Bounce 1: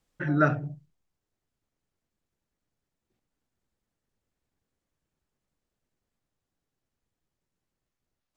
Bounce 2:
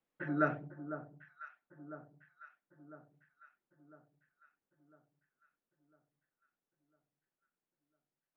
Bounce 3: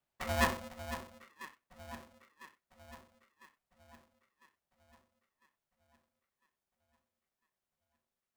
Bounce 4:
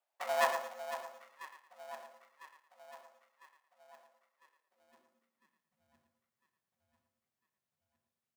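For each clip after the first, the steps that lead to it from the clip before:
flanger 1.4 Hz, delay 0.3 ms, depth 8.2 ms, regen −89%; three-way crossover with the lows and the highs turned down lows −18 dB, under 170 Hz, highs −14 dB, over 3,000 Hz; delay that swaps between a low-pass and a high-pass 501 ms, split 1,300 Hz, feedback 70%, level −10.5 dB; level −3 dB
ring modulator with a square carrier 380 Hz; level +1 dB
high-pass filter sweep 670 Hz → 110 Hz, 0:04.30–0:06.03; on a send: repeating echo 112 ms, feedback 28%, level −9.5 dB; on the sum: level −3 dB

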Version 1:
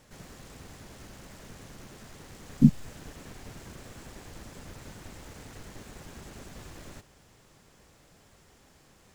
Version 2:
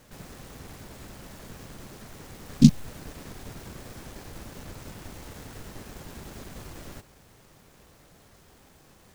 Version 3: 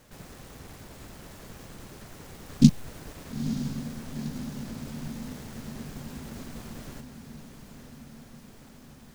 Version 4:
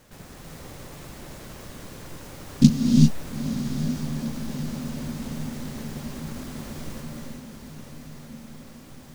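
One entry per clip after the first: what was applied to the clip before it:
short delay modulated by noise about 4,500 Hz, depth 0.067 ms; level +3.5 dB
feedback delay with all-pass diffusion 928 ms, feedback 67%, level −9.5 dB; level −1.5 dB
reverb whose tail is shaped and stops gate 420 ms rising, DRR −0.5 dB; level +1.5 dB

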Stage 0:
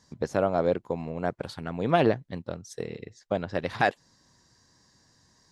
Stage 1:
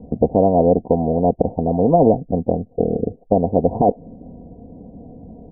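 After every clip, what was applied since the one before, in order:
Butterworth low-pass 740 Hz 72 dB per octave
comb filter 4.2 ms, depth 63%
every bin compressed towards the loudest bin 2 to 1
level +7.5 dB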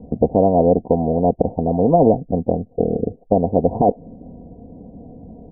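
no processing that can be heard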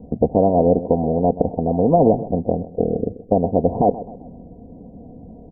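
repeating echo 129 ms, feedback 41%, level −15.5 dB
level −1 dB

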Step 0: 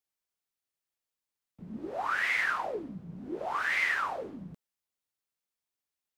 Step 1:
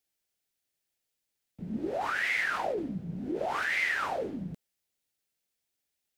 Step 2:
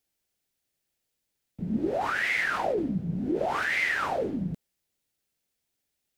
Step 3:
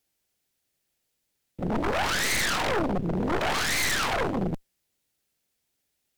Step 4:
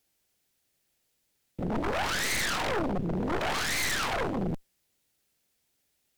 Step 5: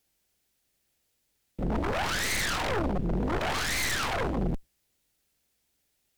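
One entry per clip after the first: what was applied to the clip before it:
parametric band 1,100 Hz −9.5 dB 0.63 octaves; in parallel at −2.5 dB: compressor whose output falls as the input rises −37 dBFS, ratio −0.5
low-shelf EQ 450 Hz +5.5 dB; level +2 dB
harmonic generator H 6 −10 dB, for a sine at −15 dBFS; wave folding −23 dBFS; level +3.5 dB
brickwall limiter −25.5 dBFS, peak gain reduction 6 dB; level +2.5 dB
sub-octave generator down 2 octaves, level 0 dB

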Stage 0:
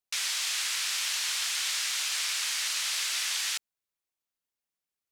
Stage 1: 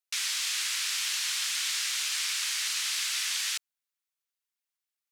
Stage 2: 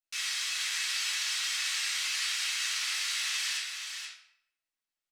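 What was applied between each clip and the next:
high-pass filter 1,100 Hz 12 dB per octave
tuned comb filter 650 Hz, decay 0.17 s, harmonics all, mix 70%; single-tap delay 477 ms −6.5 dB; convolution reverb RT60 0.80 s, pre-delay 3 ms, DRR −8 dB

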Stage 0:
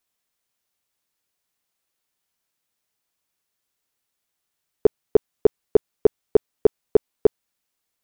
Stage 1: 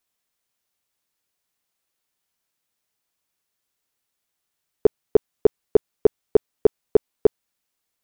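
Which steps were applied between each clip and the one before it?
no processing that can be heard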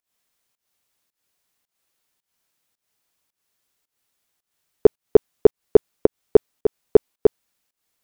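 fake sidechain pumping 109 BPM, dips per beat 1, −20 dB, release 217 ms
level +4.5 dB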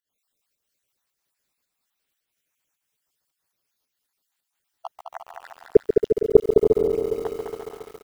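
time-frequency cells dropped at random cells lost 59%
bouncing-ball delay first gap 210 ms, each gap 0.7×, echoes 5
feedback echo at a low word length 138 ms, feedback 80%, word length 7 bits, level −8.5 dB
level −1 dB

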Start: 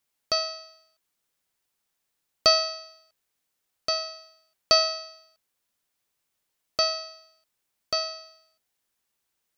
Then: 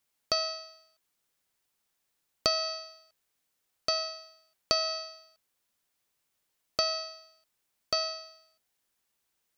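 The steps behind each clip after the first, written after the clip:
downward compressor 6 to 1, threshold −24 dBFS, peak gain reduction 9.5 dB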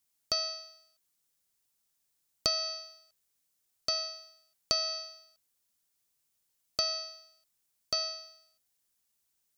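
bass and treble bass +5 dB, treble +9 dB
level −6.5 dB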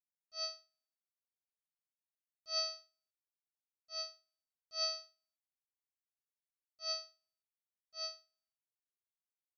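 volume swells 128 ms
expander for the loud parts 2.5 to 1, over −54 dBFS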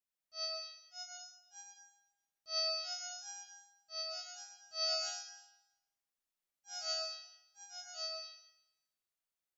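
delay with pitch and tempo change per echo 625 ms, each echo +2 semitones, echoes 2, each echo −6 dB
comb and all-pass reverb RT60 0.94 s, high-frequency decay 0.95×, pre-delay 65 ms, DRR −0.5 dB
level −1 dB

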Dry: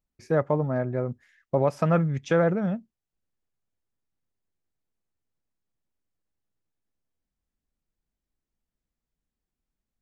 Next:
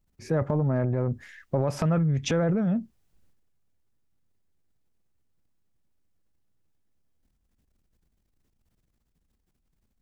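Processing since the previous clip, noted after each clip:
low-shelf EQ 250 Hz +8.5 dB
transient designer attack −6 dB, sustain +10 dB
downward compressor 5 to 1, threshold −26 dBFS, peak gain reduction 10.5 dB
level +3.5 dB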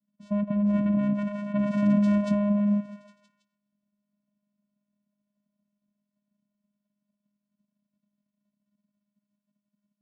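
delay with pitch and tempo change per echo 521 ms, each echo +7 semitones, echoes 3
echo through a band-pass that steps 162 ms, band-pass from 430 Hz, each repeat 0.7 octaves, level −5.5 dB
channel vocoder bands 4, square 205 Hz

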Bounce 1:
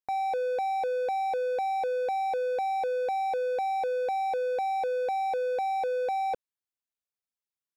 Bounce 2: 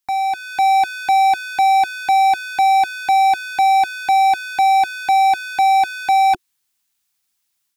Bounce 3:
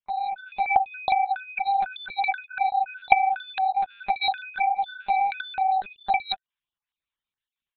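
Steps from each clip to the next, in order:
elliptic band-stop filter 360–740 Hz, stop band 80 dB; high-shelf EQ 2,100 Hz +8.5 dB; automatic gain control gain up to 6.5 dB; level +8.5 dB
time-frequency cells dropped at random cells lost 35%; one-pitch LPC vocoder at 8 kHz 200 Hz; level −9 dB

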